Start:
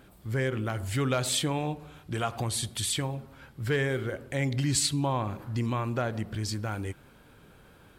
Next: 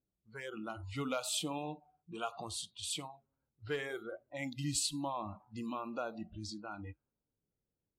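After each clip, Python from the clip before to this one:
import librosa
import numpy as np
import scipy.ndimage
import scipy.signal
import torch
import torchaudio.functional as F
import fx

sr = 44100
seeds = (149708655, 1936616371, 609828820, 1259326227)

y = fx.env_lowpass(x, sr, base_hz=470.0, full_db=-25.5)
y = fx.noise_reduce_blind(y, sr, reduce_db=26)
y = fx.notch(y, sr, hz=1800.0, q=22.0)
y = y * librosa.db_to_amplitude(-7.5)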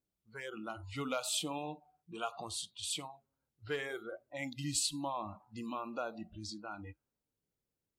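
y = fx.low_shelf(x, sr, hz=320.0, db=-4.0)
y = y * librosa.db_to_amplitude(1.0)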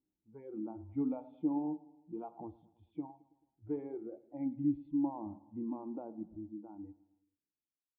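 y = fx.fade_out_tail(x, sr, length_s=2.2)
y = fx.formant_cascade(y, sr, vowel='u')
y = fx.echo_feedback(y, sr, ms=109, feedback_pct=56, wet_db=-21)
y = y * librosa.db_to_amplitude(11.0)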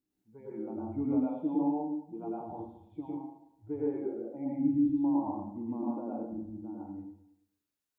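y = fx.rev_plate(x, sr, seeds[0], rt60_s=0.65, hf_ratio=0.85, predelay_ms=90, drr_db=-6.0)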